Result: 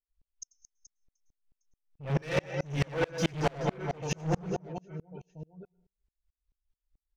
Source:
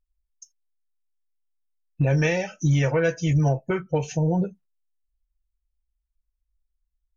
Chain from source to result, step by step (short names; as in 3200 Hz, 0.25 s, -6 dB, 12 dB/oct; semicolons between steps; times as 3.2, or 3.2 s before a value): reverb removal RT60 1 s; 3.18–3.64 overdrive pedal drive 26 dB, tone 2100 Hz, clips at -14.5 dBFS; in parallel at +2.5 dB: limiter -21.5 dBFS, peak gain reduction 9 dB; on the sum: LPF 5500 Hz 12 dB/oct; reverse bouncing-ball echo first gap 90 ms, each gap 1.5×, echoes 5; hard clip -17.5 dBFS, distortion -9 dB; on a send at -17 dB: reverb RT60 0.45 s, pre-delay 99 ms; on the sum: soft clip -16 dBFS, distortion -23 dB; dB-ramp tremolo swelling 4.6 Hz, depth 34 dB